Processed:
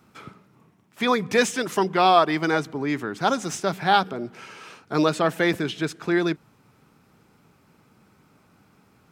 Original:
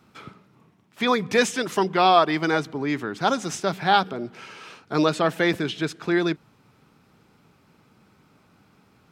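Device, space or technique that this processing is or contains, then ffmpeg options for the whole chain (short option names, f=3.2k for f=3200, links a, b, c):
exciter from parts: -filter_complex "[0:a]asplit=2[a][b];[b]highpass=4.4k,asoftclip=type=tanh:threshold=-36.5dB,highpass=2.1k,volume=-5.5dB[c];[a][c]amix=inputs=2:normalize=0"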